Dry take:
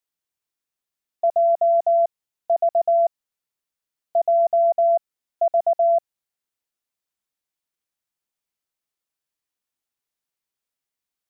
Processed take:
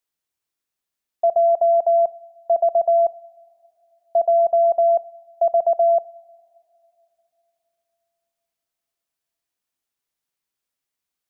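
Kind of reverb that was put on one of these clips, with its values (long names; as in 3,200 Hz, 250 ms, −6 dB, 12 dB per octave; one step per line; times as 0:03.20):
coupled-rooms reverb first 0.66 s, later 3.4 s, from −16 dB, DRR 18 dB
level +2 dB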